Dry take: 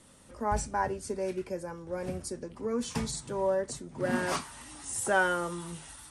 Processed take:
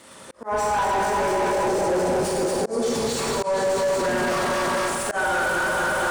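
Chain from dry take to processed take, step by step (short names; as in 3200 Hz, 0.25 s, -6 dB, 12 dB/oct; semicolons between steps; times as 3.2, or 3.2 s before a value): echo with dull and thin repeats by turns 0.116 s, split 1100 Hz, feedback 89%, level -3 dB; reverb RT60 1.2 s, pre-delay 16 ms, DRR -2.5 dB; crackle 340/s -51 dBFS; auto swell 0.745 s; high shelf 4200 Hz +8 dB; AGC gain up to 16.5 dB; 1.68–3.19 band shelf 1600 Hz -10 dB; overdrive pedal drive 29 dB, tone 1400 Hz, clips at -1 dBFS; limiter -9 dBFS, peak gain reduction 7 dB; gain -8 dB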